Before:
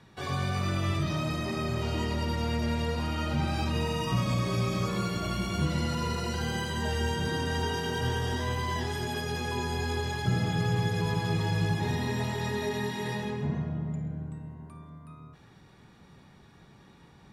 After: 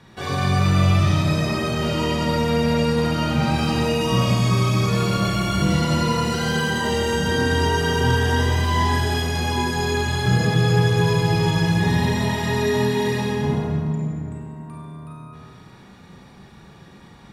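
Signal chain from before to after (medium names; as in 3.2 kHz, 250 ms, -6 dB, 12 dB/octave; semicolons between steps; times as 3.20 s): Schroeder reverb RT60 1.5 s, combs from 32 ms, DRR -1.5 dB; trim +6 dB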